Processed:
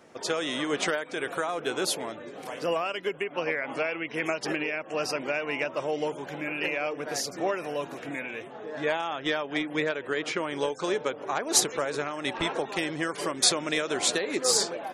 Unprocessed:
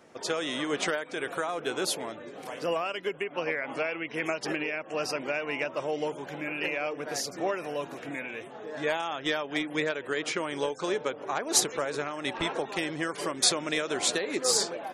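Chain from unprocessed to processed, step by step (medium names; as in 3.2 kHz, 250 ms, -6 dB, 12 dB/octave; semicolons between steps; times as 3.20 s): 8.42–10.61 s: treble shelf 7.4 kHz -11 dB; trim +1.5 dB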